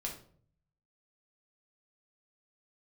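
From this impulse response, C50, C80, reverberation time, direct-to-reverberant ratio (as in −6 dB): 7.5 dB, 12.0 dB, 0.55 s, −1.0 dB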